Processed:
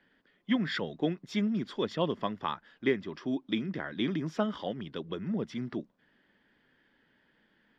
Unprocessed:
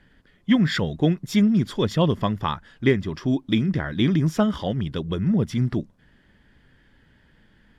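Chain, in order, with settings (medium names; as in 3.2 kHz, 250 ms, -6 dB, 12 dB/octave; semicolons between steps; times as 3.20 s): three-band isolator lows -20 dB, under 200 Hz, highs -20 dB, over 5.6 kHz; trim -7 dB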